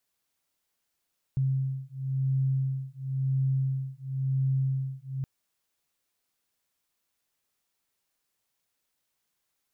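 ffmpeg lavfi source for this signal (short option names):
-f lavfi -i "aevalsrc='0.0376*(sin(2*PI*133*t)+sin(2*PI*133.96*t))':d=3.87:s=44100"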